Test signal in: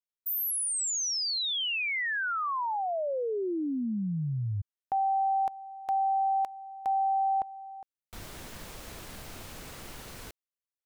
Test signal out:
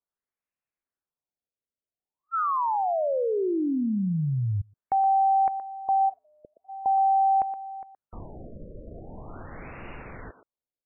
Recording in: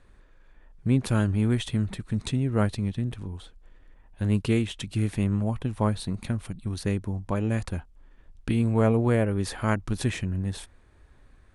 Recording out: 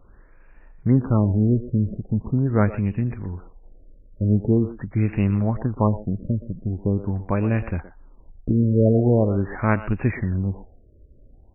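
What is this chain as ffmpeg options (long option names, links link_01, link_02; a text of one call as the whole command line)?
ffmpeg -i in.wav -filter_complex "[0:a]asplit=2[link_01][link_02];[link_02]adelay=120,highpass=300,lowpass=3400,asoftclip=type=hard:threshold=-20dB,volume=-11dB[link_03];[link_01][link_03]amix=inputs=2:normalize=0,afftfilt=real='re*lt(b*sr/1024,610*pow(2900/610,0.5+0.5*sin(2*PI*0.43*pts/sr)))':imag='im*lt(b*sr/1024,610*pow(2900/610,0.5+0.5*sin(2*PI*0.43*pts/sr)))':win_size=1024:overlap=0.75,volume=5dB" out.wav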